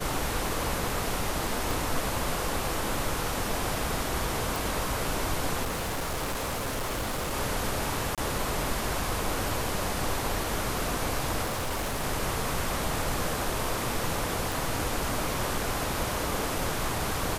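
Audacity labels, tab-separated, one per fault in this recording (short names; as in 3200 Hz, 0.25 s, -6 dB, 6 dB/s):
1.710000	1.710000	pop
4.560000	4.560000	pop
5.630000	7.340000	clipped -27.5 dBFS
8.150000	8.180000	gap 27 ms
11.440000	12.040000	clipped -26.5 dBFS
14.520000	14.520000	pop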